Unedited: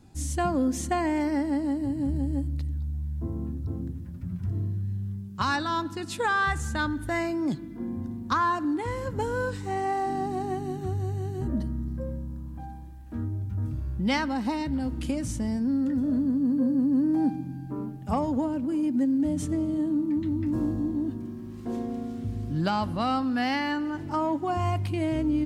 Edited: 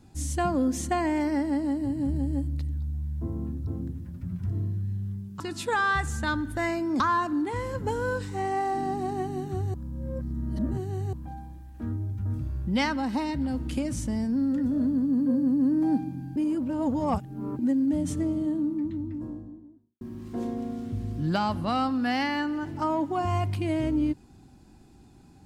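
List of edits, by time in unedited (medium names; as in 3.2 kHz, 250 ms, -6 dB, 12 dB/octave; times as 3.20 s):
5.40–5.92 s: delete
7.52–8.32 s: delete
11.06–12.45 s: reverse
17.68–18.91 s: reverse
19.49–21.33 s: studio fade out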